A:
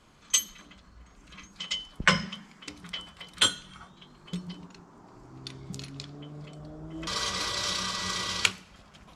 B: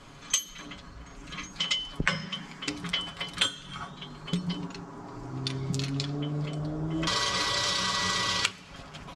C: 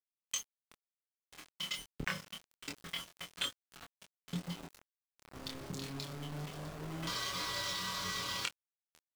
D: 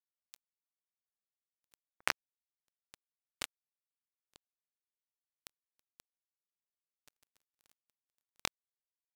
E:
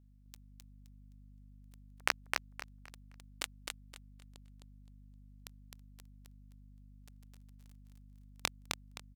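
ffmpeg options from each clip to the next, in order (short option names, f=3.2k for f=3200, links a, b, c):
-af "highshelf=f=12k:g=-11,aecho=1:1:7.2:0.51,acompressor=threshold=-34dB:ratio=6,volume=9dB"
-af "aeval=exprs='val(0)*gte(abs(val(0)),0.0266)':c=same,flanger=delay=22.5:depth=4.1:speed=0.26,volume=-7dB"
-filter_complex "[0:a]acrossover=split=5700[a][b];[b]acompressor=threshold=-56dB:ratio=4:attack=1:release=60[c];[a][c]amix=inputs=2:normalize=0,acrusher=bits=3:mix=0:aa=0.5,aeval=exprs='val(0)*sin(2*PI*430*n/s+430*0.5/5.9*sin(2*PI*5.9*n/s))':c=same,volume=9.5dB"
-af "aeval=exprs='val(0)+0.000794*(sin(2*PI*50*n/s)+sin(2*PI*2*50*n/s)/2+sin(2*PI*3*50*n/s)/3+sin(2*PI*4*50*n/s)/4+sin(2*PI*5*50*n/s)/5)':c=same,aecho=1:1:260|520|780|1040:0.668|0.174|0.0452|0.0117,volume=1dB"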